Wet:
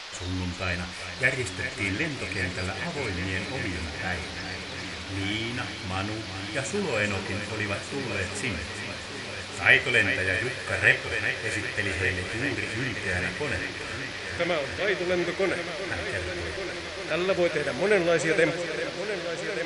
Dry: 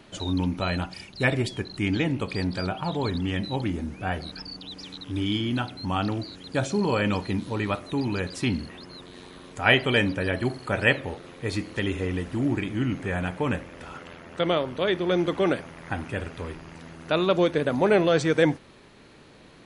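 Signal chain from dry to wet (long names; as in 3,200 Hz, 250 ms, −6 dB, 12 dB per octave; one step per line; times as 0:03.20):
octave-band graphic EQ 125/250/1,000/2,000/4,000/8,000 Hz −9/−10/−11/+10/−11/+9 dB
on a send: echo machine with several playback heads 393 ms, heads first and third, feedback 69%, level −11 dB
on the sum: harmonic and percussive parts rebalanced harmonic +6 dB
noise in a band 460–5,100 Hz −38 dBFS
level −2.5 dB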